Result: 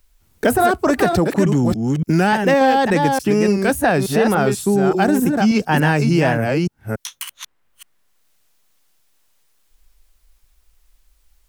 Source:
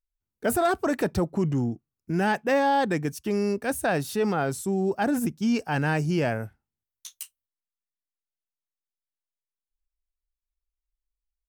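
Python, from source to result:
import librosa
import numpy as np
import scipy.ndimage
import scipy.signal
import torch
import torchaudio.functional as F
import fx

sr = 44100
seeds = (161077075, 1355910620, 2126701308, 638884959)

y = fx.reverse_delay(x, sr, ms=290, wet_db=-5.5)
y = fx.wow_flutter(y, sr, seeds[0], rate_hz=2.1, depth_cents=85.0)
y = fx.band_squash(y, sr, depth_pct=70)
y = y * 10.0 ** (8.0 / 20.0)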